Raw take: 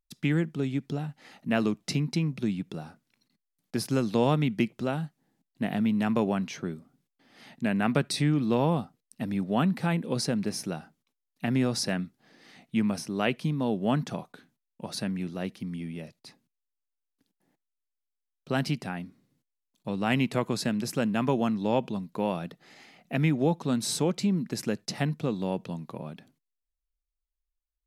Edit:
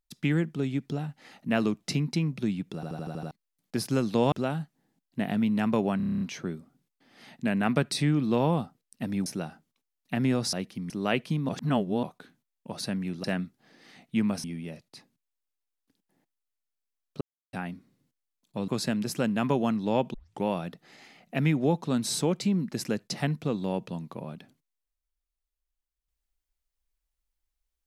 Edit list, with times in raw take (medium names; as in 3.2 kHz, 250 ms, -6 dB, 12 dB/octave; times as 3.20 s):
2.75 s: stutter in place 0.08 s, 7 plays
4.32–4.75 s: delete
6.40 s: stutter 0.03 s, 9 plays
9.45–10.57 s: delete
11.84–13.04 s: swap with 15.38–15.75 s
13.63–14.17 s: reverse
18.52–18.84 s: mute
19.99–20.46 s: delete
21.92 s: tape start 0.29 s